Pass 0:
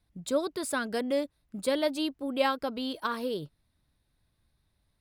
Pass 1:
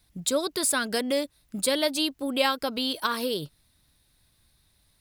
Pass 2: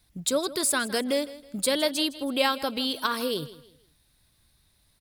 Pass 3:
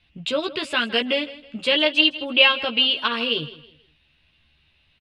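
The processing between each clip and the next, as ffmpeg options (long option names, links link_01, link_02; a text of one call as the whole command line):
ffmpeg -i in.wav -filter_complex "[0:a]highshelf=frequency=2500:gain=12,asplit=2[link_01][link_02];[link_02]acompressor=threshold=-32dB:ratio=6,volume=3dB[link_03];[link_01][link_03]amix=inputs=2:normalize=0,volume=-2.5dB" out.wav
ffmpeg -i in.wav -af "aecho=1:1:161|322|483:0.141|0.0452|0.0145" out.wav
ffmpeg -i in.wav -filter_complex "[0:a]lowpass=frequency=2800:width_type=q:width=8.9,asplit=2[link_01][link_02];[link_02]adelay=13,volume=-3.5dB[link_03];[link_01][link_03]amix=inputs=2:normalize=0" out.wav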